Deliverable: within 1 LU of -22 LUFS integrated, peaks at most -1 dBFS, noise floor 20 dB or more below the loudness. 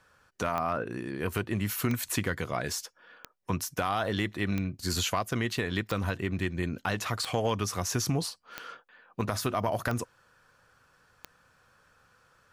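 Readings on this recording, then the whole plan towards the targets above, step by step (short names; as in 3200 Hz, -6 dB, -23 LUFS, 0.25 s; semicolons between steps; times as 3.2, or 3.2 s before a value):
clicks 9; loudness -31.0 LUFS; peak -11.5 dBFS; loudness target -22.0 LUFS
-> de-click; gain +9 dB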